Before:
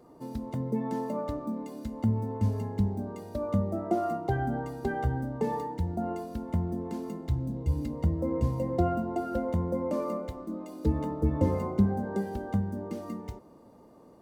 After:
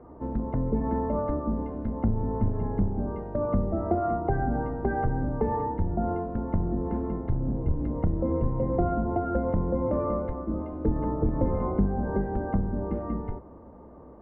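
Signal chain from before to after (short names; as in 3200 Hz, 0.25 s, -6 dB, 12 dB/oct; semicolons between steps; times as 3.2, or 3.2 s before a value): octaver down 2 oct, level +2 dB; LPF 1700 Hz 24 dB/oct; low shelf 170 Hz -4 dB; compressor 2.5:1, threshold -30 dBFS, peak gain reduction 9 dB; gain +6.5 dB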